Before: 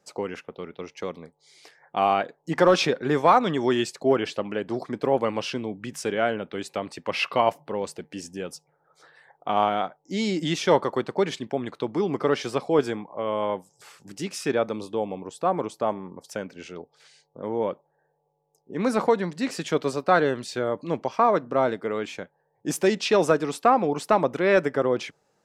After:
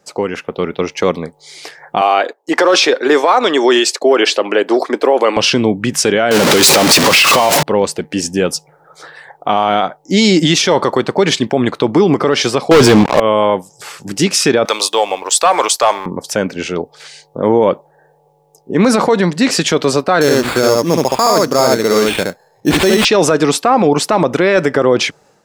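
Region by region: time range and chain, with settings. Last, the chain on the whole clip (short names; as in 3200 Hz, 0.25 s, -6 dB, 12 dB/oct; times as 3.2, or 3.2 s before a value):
2.01–5.37 HPF 320 Hz 24 dB/oct + gate -49 dBFS, range -10 dB
6.31–7.63 zero-crossing step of -21.5 dBFS + HPF 170 Hz 6 dB/oct
12.71–13.2 low shelf 150 Hz +9 dB + sample leveller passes 5
14.65–16.06 HPF 620 Hz + tilt +3 dB/oct + sample leveller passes 1
20.21–23.05 echo 70 ms -3.5 dB + sample-rate reducer 5900 Hz + high shelf 9300 Hz -5.5 dB
whole clip: dynamic EQ 5100 Hz, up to +5 dB, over -41 dBFS, Q 0.73; AGC gain up to 8 dB; maximiser +12.5 dB; gain -1 dB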